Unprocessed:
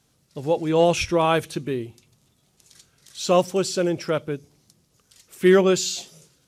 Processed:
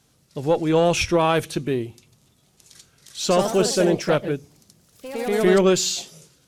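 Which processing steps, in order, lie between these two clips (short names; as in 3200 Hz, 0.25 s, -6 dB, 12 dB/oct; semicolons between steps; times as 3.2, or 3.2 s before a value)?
one diode to ground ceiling -12 dBFS; limiter -11.5 dBFS, peak gain reduction 6 dB; 3.22–5.78 echoes that change speed 84 ms, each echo +2 st, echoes 3, each echo -6 dB; gain +3.5 dB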